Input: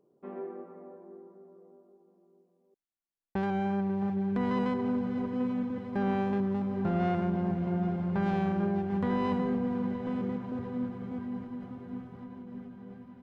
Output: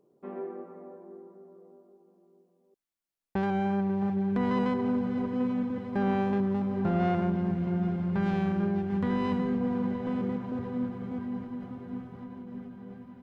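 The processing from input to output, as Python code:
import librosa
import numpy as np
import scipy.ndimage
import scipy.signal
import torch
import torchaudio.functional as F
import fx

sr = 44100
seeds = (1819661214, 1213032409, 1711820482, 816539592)

y = fx.peak_eq(x, sr, hz=700.0, db=-5.0, octaves=1.4, at=(7.32, 9.61))
y = y * 10.0 ** (2.0 / 20.0)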